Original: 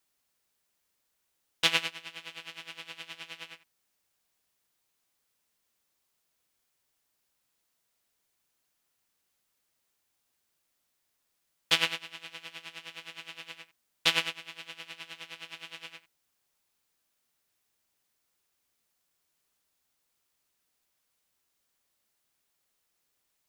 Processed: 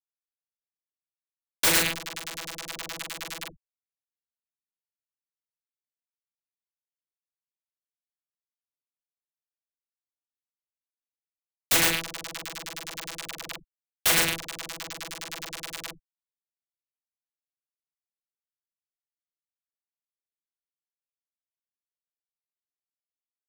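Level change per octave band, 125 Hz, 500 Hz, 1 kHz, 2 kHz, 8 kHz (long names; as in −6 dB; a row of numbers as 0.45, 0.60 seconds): +10.0, +8.5, +6.5, +4.0, +15.0 decibels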